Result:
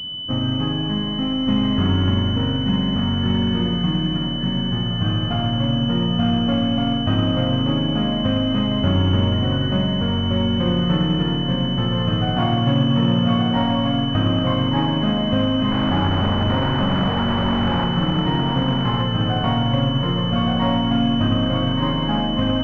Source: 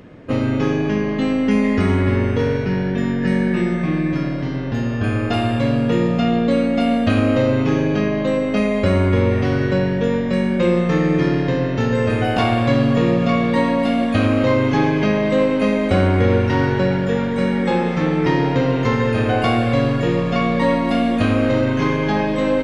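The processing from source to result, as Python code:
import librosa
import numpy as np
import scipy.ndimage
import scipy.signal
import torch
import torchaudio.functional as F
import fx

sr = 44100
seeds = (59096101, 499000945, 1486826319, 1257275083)

y = fx.clip_1bit(x, sr, at=(15.71, 17.85))
y = fx.peak_eq(y, sr, hz=440.0, db=-14.0, octaves=0.85)
y = y + 10.0 ** (-4.0 / 20.0) * np.pad(y, (int(1177 * sr / 1000.0), 0))[:len(y)]
y = fx.pwm(y, sr, carrier_hz=3000.0)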